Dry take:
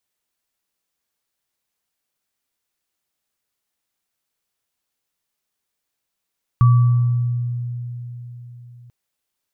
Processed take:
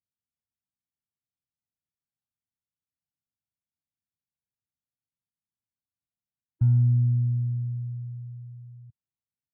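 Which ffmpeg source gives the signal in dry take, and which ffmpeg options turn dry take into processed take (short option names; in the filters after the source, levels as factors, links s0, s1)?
-f lavfi -i "aevalsrc='0.398*pow(10,-3*t/4.11)*sin(2*PI*121*t)+0.0891*pow(10,-3*t/1.11)*sin(2*PI*1150*t)':d=2.29:s=44100"
-af "aeval=exprs='(tanh(6.31*val(0)+0.55)-tanh(0.55))/6.31':c=same,bandpass=f=110:t=q:w=1.3:csg=0,afftfilt=real='re*eq(mod(floor(b*sr/1024/330),2),0)':imag='im*eq(mod(floor(b*sr/1024/330),2),0)':win_size=1024:overlap=0.75"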